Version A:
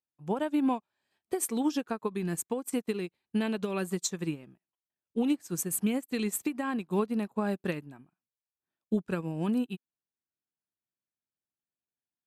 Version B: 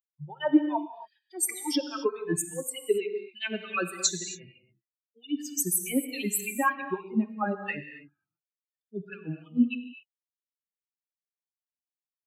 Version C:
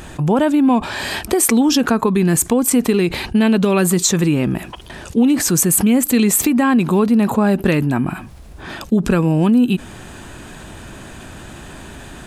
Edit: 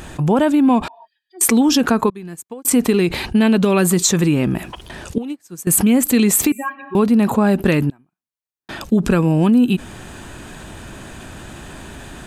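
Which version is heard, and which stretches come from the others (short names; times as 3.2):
C
0.88–1.41 from B
2.1–2.65 from A
5.18–5.67 from A
6.52–6.95 from B
7.9–8.69 from A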